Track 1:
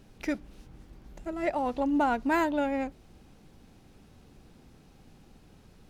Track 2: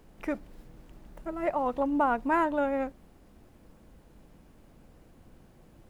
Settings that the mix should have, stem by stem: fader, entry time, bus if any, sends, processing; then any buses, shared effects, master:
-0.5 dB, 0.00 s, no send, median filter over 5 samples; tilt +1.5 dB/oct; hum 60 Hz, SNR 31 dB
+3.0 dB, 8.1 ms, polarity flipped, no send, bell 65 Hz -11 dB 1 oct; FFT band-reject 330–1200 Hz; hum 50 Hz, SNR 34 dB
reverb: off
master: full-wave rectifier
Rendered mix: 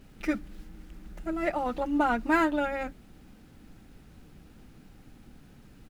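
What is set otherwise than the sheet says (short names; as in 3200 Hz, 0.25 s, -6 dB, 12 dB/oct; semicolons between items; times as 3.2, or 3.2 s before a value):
stem 1: missing tilt +1.5 dB/oct; master: missing full-wave rectifier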